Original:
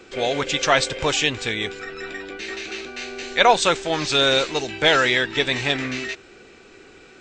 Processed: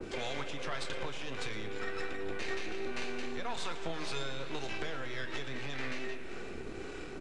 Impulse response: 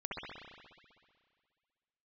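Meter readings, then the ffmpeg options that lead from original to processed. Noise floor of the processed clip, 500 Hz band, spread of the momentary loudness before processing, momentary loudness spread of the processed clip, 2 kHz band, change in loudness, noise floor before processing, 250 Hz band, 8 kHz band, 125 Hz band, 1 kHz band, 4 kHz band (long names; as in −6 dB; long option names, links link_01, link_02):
−43 dBFS, −17.0 dB, 15 LU, 6 LU, −17.5 dB, −19.0 dB, −48 dBFS, −13.5 dB, −20.0 dB, −12.5 dB, −19.5 dB, −20.5 dB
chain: -filter_complex "[0:a]lowshelf=frequency=190:gain=11,acrossover=split=250|1100|4500[link_01][link_02][link_03][link_04];[link_01]acompressor=threshold=-47dB:ratio=4[link_05];[link_02]acompressor=threshold=-33dB:ratio=4[link_06];[link_03]acompressor=threshold=-23dB:ratio=4[link_07];[link_04]acompressor=threshold=-45dB:ratio=4[link_08];[link_05][link_06][link_07][link_08]amix=inputs=4:normalize=0,acrossover=split=270[link_09][link_10];[link_10]alimiter=limit=-21dB:level=0:latency=1:release=33[link_11];[link_09][link_11]amix=inputs=2:normalize=0,acompressor=threshold=-38dB:ratio=5,acrossover=split=480[link_12][link_13];[link_12]aeval=exprs='val(0)*(1-0.5/2+0.5/2*cos(2*PI*1.8*n/s))':channel_layout=same[link_14];[link_13]aeval=exprs='val(0)*(1-0.5/2-0.5/2*cos(2*PI*1.8*n/s))':channel_layout=same[link_15];[link_14][link_15]amix=inputs=2:normalize=0,aeval=exprs='0.0447*(cos(1*acos(clip(val(0)/0.0447,-1,1)))-cos(1*PI/2))+0.0224*(cos(2*acos(clip(val(0)/0.0447,-1,1)))-cos(2*PI/2))+0.00224*(cos(6*acos(clip(val(0)/0.0447,-1,1)))-cos(6*PI/2))':channel_layout=same,flanger=delay=3.2:depth=2.1:regen=89:speed=0.56:shape=sinusoidal,acrusher=bits=10:mix=0:aa=0.000001,asplit=2[link_16][link_17];[link_17]adelay=29,volume=-13dB[link_18];[link_16][link_18]amix=inputs=2:normalize=0,aresample=22050,aresample=44100,asplit=2[link_19][link_20];[1:a]atrim=start_sample=2205,adelay=114[link_21];[link_20][link_21]afir=irnorm=-1:irlink=0,volume=-11.5dB[link_22];[link_19][link_22]amix=inputs=2:normalize=0,adynamicequalizer=threshold=0.001:dfrequency=1700:dqfactor=0.7:tfrequency=1700:tqfactor=0.7:attack=5:release=100:ratio=0.375:range=3:mode=cutabove:tftype=highshelf,volume=8.5dB"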